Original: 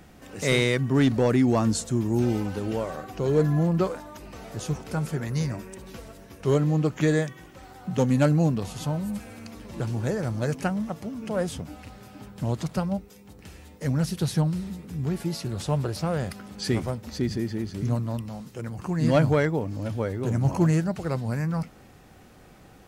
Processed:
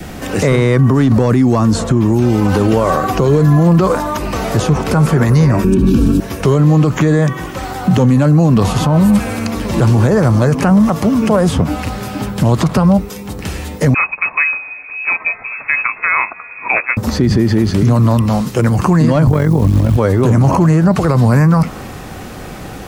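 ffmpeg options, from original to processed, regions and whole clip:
ffmpeg -i in.wav -filter_complex "[0:a]asettb=1/sr,asplit=3[link_01][link_02][link_03];[link_01]atrim=end=5.644[link_04];[link_02]atrim=start=5.64:end=6.2,asetpts=PTS-STARTPTS,afade=type=in:duration=0.004:curve=qsin,afade=type=out:start_time=0.556:duration=0.004:curve=qsin,asuperstop=centerf=2000:order=20:qfactor=5.8,lowshelf=frequency=420:width_type=q:width=3:gain=13.5[link_05];[link_03]atrim=start=6.196[link_06];[link_04][link_05]acrossfade=duration=0.004:curve1=hsin:curve2=qsin[link_07];[link_07][link_06]acrossfade=duration=0.004:curve1=qsin:curve2=hsin,asettb=1/sr,asplit=3[link_08][link_09][link_10];[link_08]atrim=end=13.944[link_11];[link_09]atrim=start=13.94:end=16.97,asetpts=PTS-STARTPTS,afade=type=in:duration=0.004:curve=qsin,afade=type=out:start_time=3.026:duration=0.004:curve=qsin,highpass=frequency=200:poles=1,agate=range=-8dB:threshold=-32dB:ratio=16:release=100:detection=peak,lowpass=frequency=2300:width_type=q:width=0.5098,lowpass=frequency=2300:width_type=q:width=0.6013,lowpass=frequency=2300:width_type=q:width=0.9,lowpass=frequency=2300:width_type=q:width=2.563,afreqshift=-2700[link_12];[link_10]atrim=start=16.966[link_13];[link_11][link_12]acrossfade=duration=0.004:curve1=hsin:curve2=qsin[link_14];[link_14][link_13]acrossfade=duration=0.004:curve1=qsin:curve2=hsin,asettb=1/sr,asplit=3[link_15][link_16][link_17];[link_15]atrim=end=19.274[link_18];[link_16]atrim=start=19.27:end=19.97,asetpts=PTS-STARTPTS,afade=type=in:duration=0.004:curve=qsin,afade=type=out:start_time=0.696:duration=0.004:curve=qsin,tremolo=f=45:d=0.788,bass=frequency=250:gain=13,treble=frequency=4000:gain=-7,acrusher=bits=9:dc=4:mix=0:aa=0.000001[link_19];[link_17]atrim=start=19.966[link_20];[link_18][link_19]acrossfade=duration=0.004:curve1=hsin:curve2=qsin[link_21];[link_21][link_20]acrossfade=duration=0.004:curve1=qsin:curve2=hsin,adynamicequalizer=threshold=0.00316:dfrequency=1100:dqfactor=4:tfrequency=1100:tqfactor=4:attack=5:release=100:ratio=0.375:range=3.5:mode=boostabove:tftype=bell,acrossover=split=210|1800|4000[link_22][link_23][link_24][link_25];[link_22]acompressor=threshold=-26dB:ratio=4[link_26];[link_23]acompressor=threshold=-27dB:ratio=4[link_27];[link_24]acompressor=threshold=-53dB:ratio=4[link_28];[link_25]acompressor=threshold=-53dB:ratio=4[link_29];[link_26][link_27][link_28][link_29]amix=inputs=4:normalize=0,alimiter=level_in=25dB:limit=-1dB:release=50:level=0:latency=1,volume=-2.5dB" out.wav

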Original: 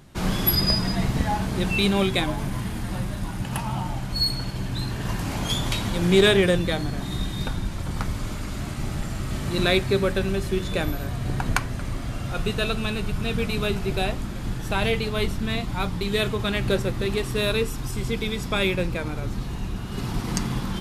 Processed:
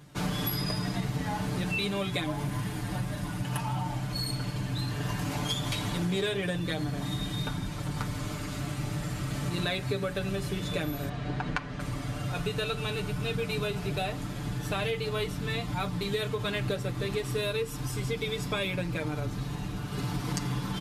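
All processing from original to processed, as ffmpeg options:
ffmpeg -i in.wav -filter_complex "[0:a]asettb=1/sr,asplit=3[link_01][link_02][link_03];[link_01]atrim=end=11.094[link_04];[link_02]atrim=start=11.09:end=11.8,asetpts=PTS-STARTPTS,afade=type=in:duration=0.004:curve=qsin,afade=type=out:start_time=0.706:duration=0.004:curve=qsin,lowpass=4100,equalizer=frequency=110:width_type=o:width=0.52:gain=-9.5[link_05];[link_03]atrim=start=11.796[link_06];[link_04][link_05]acrossfade=duration=0.004:curve1=hsin:curve2=qsin[link_07];[link_07][link_06]acrossfade=duration=0.004:curve1=qsin:curve2=hsin,highpass=57,aecho=1:1:6.8:0.8,acompressor=threshold=-23dB:ratio=6,volume=-4dB" out.wav

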